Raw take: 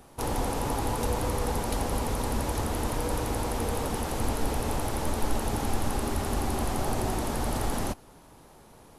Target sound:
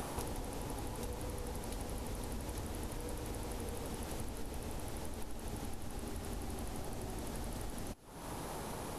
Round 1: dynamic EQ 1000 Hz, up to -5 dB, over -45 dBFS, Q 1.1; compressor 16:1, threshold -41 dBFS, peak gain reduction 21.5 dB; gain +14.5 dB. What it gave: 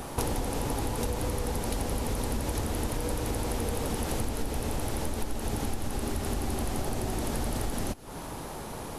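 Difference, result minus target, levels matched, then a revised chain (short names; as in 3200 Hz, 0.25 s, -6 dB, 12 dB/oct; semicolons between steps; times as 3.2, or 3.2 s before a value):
compressor: peak gain reduction -11.5 dB
dynamic EQ 1000 Hz, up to -5 dB, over -45 dBFS, Q 1.1; compressor 16:1, threshold -53 dBFS, peak gain reduction 32.5 dB; gain +14.5 dB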